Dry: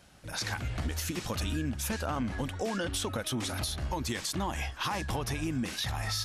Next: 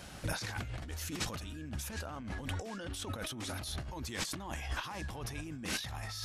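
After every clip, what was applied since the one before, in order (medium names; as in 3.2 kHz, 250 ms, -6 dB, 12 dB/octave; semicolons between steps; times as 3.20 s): compressor with a negative ratio -42 dBFS, ratio -1; trim +1.5 dB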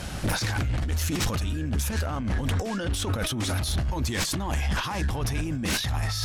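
bass shelf 150 Hz +8 dB; sine folder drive 10 dB, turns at -19.5 dBFS; trim -2 dB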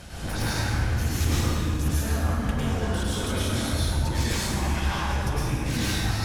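reverberation RT60 2.4 s, pre-delay 93 ms, DRR -9 dB; trim -8.5 dB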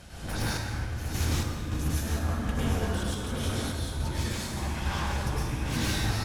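random-step tremolo; delay 758 ms -7.5 dB; trim -2 dB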